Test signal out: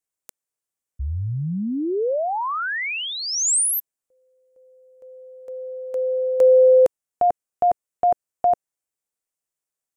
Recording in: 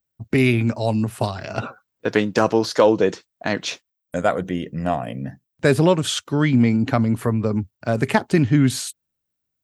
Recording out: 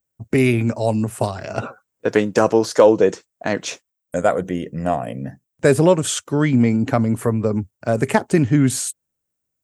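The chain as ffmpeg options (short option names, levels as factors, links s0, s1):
-af "equalizer=f=500:t=o:w=1:g=4,equalizer=f=4000:t=o:w=1:g=-6,equalizer=f=8000:t=o:w=1:g=8"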